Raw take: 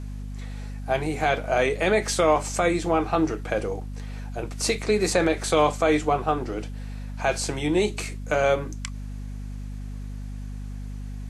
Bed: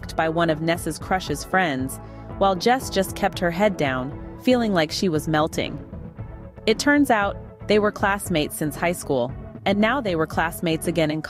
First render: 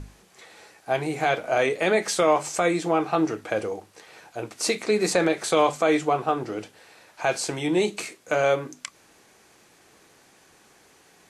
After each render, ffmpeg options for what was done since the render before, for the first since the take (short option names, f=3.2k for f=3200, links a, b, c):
-af "bandreject=f=50:t=h:w=6,bandreject=f=100:t=h:w=6,bandreject=f=150:t=h:w=6,bandreject=f=200:t=h:w=6,bandreject=f=250:t=h:w=6"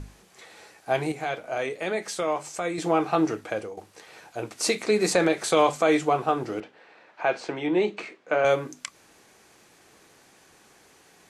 -filter_complex "[0:a]asettb=1/sr,asplit=3[a][b][c];[a]atrim=end=6.604[d];[b]atrim=start=6.6:end=8.45,asetpts=PTS-STARTPTS,afade=t=in:d=0.004:c=qsin,afade=t=out:st=1.846:d=0.004:c=qsin,highpass=210,lowpass=2.6k[e];[c]atrim=start=8.446[f];[d][e]acrossfade=d=0.004:c1=hsin:c2=qsin[g];[g][f]acrossfade=d=0.004:c1=qsin:c2=hsin,asplit=4[h][i][j][k];[h]atrim=end=1.122[l];[i]atrim=start=1.118:end=2.782,asetpts=PTS-STARTPTS,volume=-7dB[m];[j]atrim=start=2.778:end=3.77,asetpts=PTS-STARTPTS,afade=t=out:st=0.562:d=0.43:silence=0.281838[n];[k]atrim=start=3.77,asetpts=PTS-STARTPTS,afade=t=in:d=0.004:c=hsin:silence=0.281838[o];[l][m]acrossfade=d=0.004:c1=hsin:c2=hsin[p];[n][o]concat=n=2:v=0:a=1[q];[p][q]acrossfade=d=0.004:c1=hsin:c2=hsin"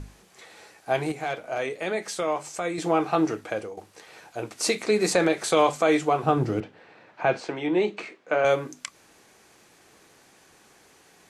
-filter_complex "[0:a]asettb=1/sr,asplit=3[a][b][c];[a]atrim=end=1.064[d];[b]atrim=start=1.06:end=1.59,asetpts=PTS-STARTPTS,afade=t=in:d=0.004:c=qsin,afade=t=out:st=0.526:d=0.004:c=qsin,asoftclip=type=hard:threshold=-20.5dB[e];[c]atrim=start=1.586[f];[d][e]acrossfade=d=0.004:c1=hsin:c2=qsin[g];[g][f]acrossfade=d=0.004:c1=qsin:c2=hsin,asettb=1/sr,asplit=3[h][i][j];[h]atrim=end=6.234[k];[i]atrim=start=6.23:end=7.4,asetpts=PTS-STARTPTS,afade=t=in:d=0.004:c=qsin,afade=t=out:st=1.166:d=0.004:c=qsin,equalizer=f=99:w=0.55:g=15[l];[j]atrim=start=7.396[m];[k][l]acrossfade=d=0.004:c1=hsin:c2=qsin[n];[n][m]acrossfade=d=0.004:c1=qsin:c2=hsin"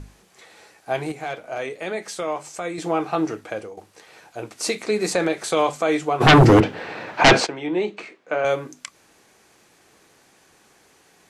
-filter_complex "[0:a]asplit=3[a][b][c];[a]afade=t=out:st=6.2:d=0.02[d];[b]aeval=exprs='0.473*sin(PI/2*5.62*val(0)/0.473)':c=same,afade=t=in:st=6.2:d=0.02,afade=t=out:st=7.45:d=0.02[e];[c]afade=t=in:st=7.45:d=0.02[f];[d][e][f]amix=inputs=3:normalize=0"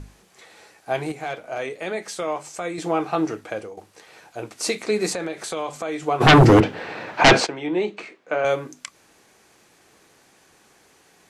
-filter_complex "[0:a]asettb=1/sr,asplit=3[a][b][c];[a]atrim=end=5.134[d];[b]atrim=start=5.13:end=6.03,asetpts=PTS-STARTPTS,afade=t=in:d=0.004:c=qsin,afade=t=out:st=0.896:d=0.004:c=qsin,acompressor=threshold=-30dB:ratio=2:attack=3.2:release=140:knee=1:detection=peak[e];[c]atrim=start=6.026[f];[d][e]acrossfade=d=0.004:c1=hsin:c2=qsin[g];[g][f]acrossfade=d=0.004:c1=qsin:c2=hsin"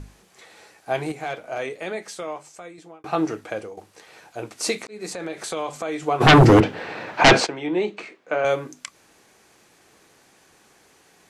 -filter_complex "[0:a]asplit=3[a][b][c];[a]atrim=end=3.04,asetpts=PTS-STARTPTS,afade=t=out:st=1.65:d=1.39[d];[b]atrim=start=3.04:end=4.87,asetpts=PTS-STARTPTS,afade=t=in:d=0.004:c=hsin,afade=t=out:st=1.826:d=0.004:c=hsin[e];[c]atrim=start=4.87,asetpts=PTS-STARTPTS,afade=t=in:d=0.51[f];[d][e][f]concat=n=3:v=0:a=1"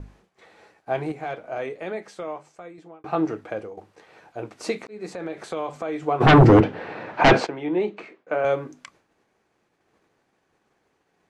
-af "lowpass=f=1.5k:p=1,agate=range=-33dB:threshold=-51dB:ratio=3:detection=peak"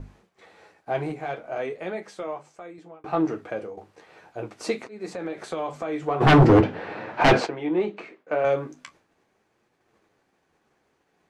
-filter_complex "[0:a]asplit=2[a][b];[b]asoftclip=type=tanh:threshold=-19.5dB,volume=-4.5dB[c];[a][c]amix=inputs=2:normalize=0,flanger=delay=7.7:depth=7.1:regen=-49:speed=0.41:shape=triangular"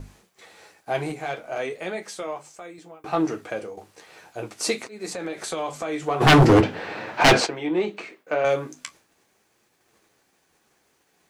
-af "crystalizer=i=4:c=0"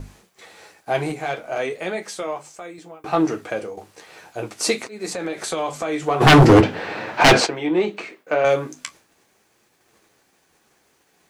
-af "volume=4dB,alimiter=limit=-3dB:level=0:latency=1"